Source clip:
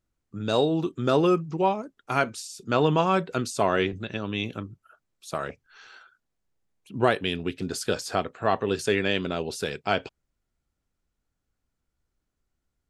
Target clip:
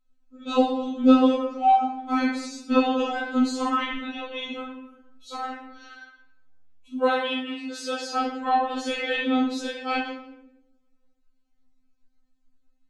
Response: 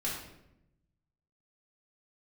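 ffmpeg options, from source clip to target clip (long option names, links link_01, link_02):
-filter_complex "[0:a]lowpass=6400,asettb=1/sr,asplit=3[link_01][link_02][link_03];[link_01]atrim=end=4.564[link_04];[link_02]atrim=start=4.56:end=5.33,asetpts=PTS-STARTPTS,afade=type=in:duration=0.004:curve=qsin,afade=type=out:start_time=0.766:duration=0.004:curve=qsin,asplit=2[link_05][link_06];[link_06]adelay=39,volume=-3dB[link_07];[link_05][link_07]amix=inputs=2:normalize=0,atrim=end_sample=33957[link_08];[link_03]atrim=start=5.326[link_09];[link_04][link_08]acrossfade=duration=0.004:curve1=hsin:curve2=qsin[link_10];[link_10][link_09]acrossfade=duration=0.004:curve1=qsin:curve2=hsin,asplit=3[link_11][link_12][link_13];[link_11]afade=type=out:start_time=6.95:duration=0.02[link_14];[link_12]highpass=frequency=360:width=0.5412,highpass=frequency=360:width=1.3066,afade=type=in:start_time=6.95:duration=0.02,afade=type=out:start_time=8.11:duration=0.02[link_15];[link_13]afade=type=in:start_time=8.11:duration=0.02[link_16];[link_14][link_15][link_16]amix=inputs=3:normalize=0[link_17];[1:a]atrim=start_sample=2205[link_18];[link_17][link_18]afir=irnorm=-1:irlink=0,afftfilt=real='re*3.46*eq(mod(b,12),0)':imag='im*3.46*eq(mod(b,12),0)':win_size=2048:overlap=0.75"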